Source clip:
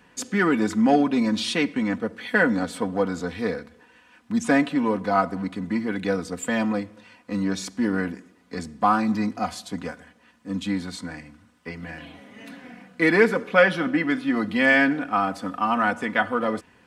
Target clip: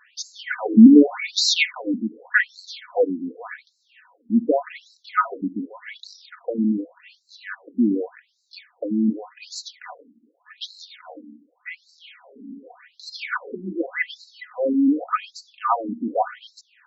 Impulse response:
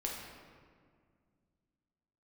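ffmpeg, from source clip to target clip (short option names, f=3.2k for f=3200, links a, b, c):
-filter_complex "[0:a]asettb=1/sr,asplit=3[a][b][c];[a]atrim=end=0.584[d];[b]atrim=start=0.58:end=1.82,asetpts=PTS-STARTPTS,afade=t=in:d=0.004:c=qsin,afade=t=out:st=1.236:d=0.004:c=qsin,acontrast=80[e];[c]atrim=start=1.816[f];[d][e]acrossfade=d=0.004:c1=hsin:c2=qsin[g];[g][f]acrossfade=d=0.004:c1=qsin:c2=hsin,afftfilt=real='re*between(b*sr/1024,250*pow(5500/250,0.5+0.5*sin(2*PI*0.86*pts/sr))/1.41,250*pow(5500/250,0.5+0.5*sin(2*PI*0.86*pts/sr))*1.41)':imag='im*between(b*sr/1024,250*pow(5500/250,0.5+0.5*sin(2*PI*0.86*pts/sr))/1.41,250*pow(5500/250,0.5+0.5*sin(2*PI*0.86*pts/sr))*1.41)':win_size=1024:overlap=0.75,volume=5.5dB"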